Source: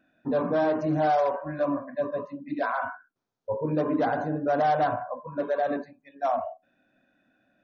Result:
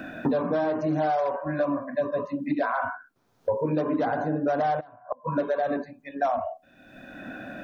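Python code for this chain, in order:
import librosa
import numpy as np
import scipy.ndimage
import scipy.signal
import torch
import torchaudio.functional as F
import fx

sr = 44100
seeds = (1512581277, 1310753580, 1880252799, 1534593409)

y = fx.gate_flip(x, sr, shuts_db=-24.0, range_db=-26, at=(4.79, 5.35), fade=0.02)
y = fx.band_squash(y, sr, depth_pct=100)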